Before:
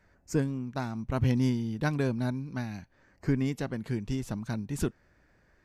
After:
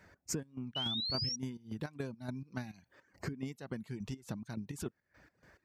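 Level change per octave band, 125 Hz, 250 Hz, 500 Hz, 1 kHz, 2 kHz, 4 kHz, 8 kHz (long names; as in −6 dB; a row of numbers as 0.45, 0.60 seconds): −12.5, −11.5, −11.0, −10.0, −10.0, +10.0, +1.0 decibels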